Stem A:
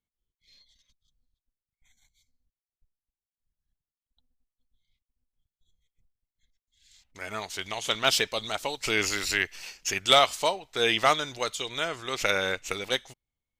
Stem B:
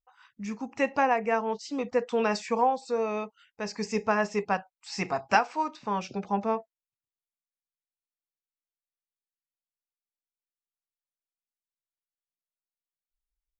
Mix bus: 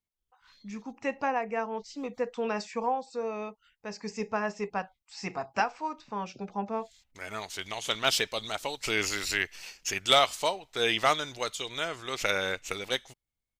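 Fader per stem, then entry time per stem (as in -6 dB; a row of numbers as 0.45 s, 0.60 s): -2.5 dB, -5.0 dB; 0.00 s, 0.25 s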